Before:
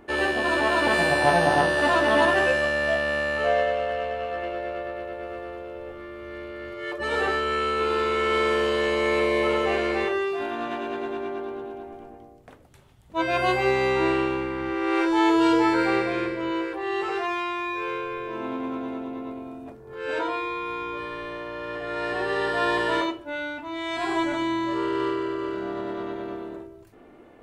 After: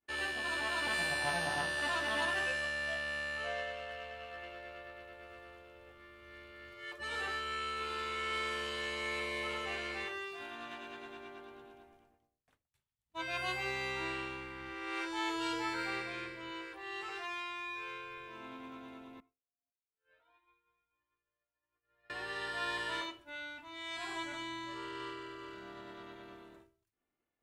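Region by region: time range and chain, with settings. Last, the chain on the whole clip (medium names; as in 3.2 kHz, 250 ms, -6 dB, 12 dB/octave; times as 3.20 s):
19.20–22.10 s: distance through air 340 m + feedback comb 54 Hz, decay 1.9 s, harmonics odd, mix 80% + Shepard-style flanger rising 1.6 Hz
whole clip: amplifier tone stack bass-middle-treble 5-5-5; expander -54 dBFS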